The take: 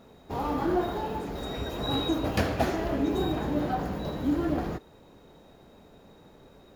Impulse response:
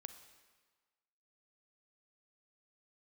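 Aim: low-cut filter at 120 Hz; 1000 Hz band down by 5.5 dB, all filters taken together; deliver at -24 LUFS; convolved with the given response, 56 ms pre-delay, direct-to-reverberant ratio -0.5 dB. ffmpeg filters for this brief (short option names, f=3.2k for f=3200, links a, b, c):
-filter_complex "[0:a]highpass=120,equalizer=f=1k:t=o:g=-8,asplit=2[a][b];[1:a]atrim=start_sample=2205,adelay=56[c];[b][c]afir=irnorm=-1:irlink=0,volume=6dB[d];[a][d]amix=inputs=2:normalize=0,volume=4dB"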